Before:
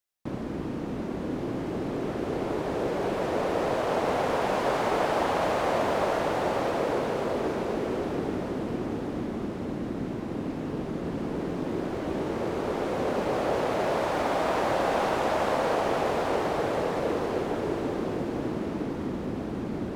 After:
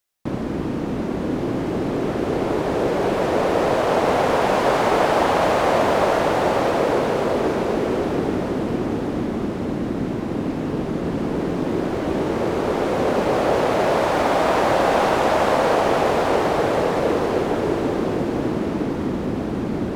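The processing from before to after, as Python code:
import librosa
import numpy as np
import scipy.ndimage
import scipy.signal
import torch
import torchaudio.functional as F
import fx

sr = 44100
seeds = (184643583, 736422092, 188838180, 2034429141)

y = F.gain(torch.from_numpy(x), 8.0).numpy()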